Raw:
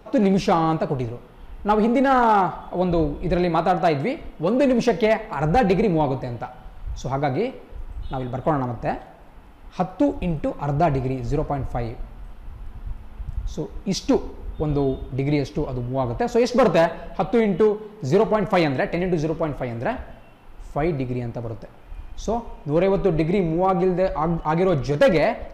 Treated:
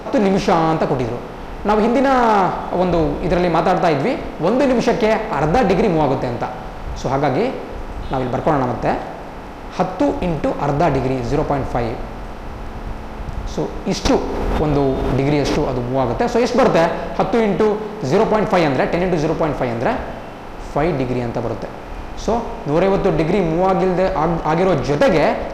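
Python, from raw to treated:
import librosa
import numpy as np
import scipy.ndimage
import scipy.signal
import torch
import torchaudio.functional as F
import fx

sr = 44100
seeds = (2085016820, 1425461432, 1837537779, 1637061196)

y = fx.bin_compress(x, sr, power=0.6)
y = fx.pre_swell(y, sr, db_per_s=22.0, at=(14.05, 15.74))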